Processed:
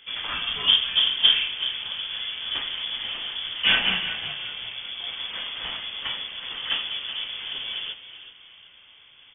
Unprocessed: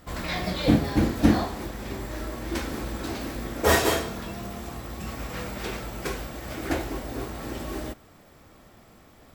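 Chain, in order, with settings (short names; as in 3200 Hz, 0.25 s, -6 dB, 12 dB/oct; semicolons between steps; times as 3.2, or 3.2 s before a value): frequency-shifting echo 0.373 s, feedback 35%, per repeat +39 Hz, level -12 dB; inverted band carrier 3400 Hz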